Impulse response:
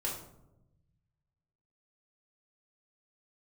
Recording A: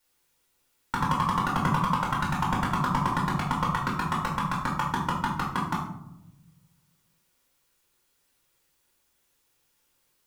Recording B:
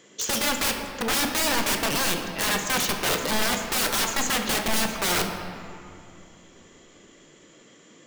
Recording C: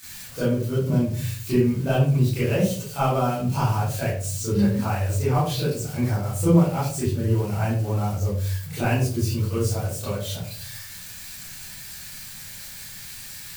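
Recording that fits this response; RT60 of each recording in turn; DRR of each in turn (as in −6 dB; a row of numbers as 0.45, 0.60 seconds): A; 0.90, 2.8, 0.50 seconds; −4.0, 4.0, −12.5 decibels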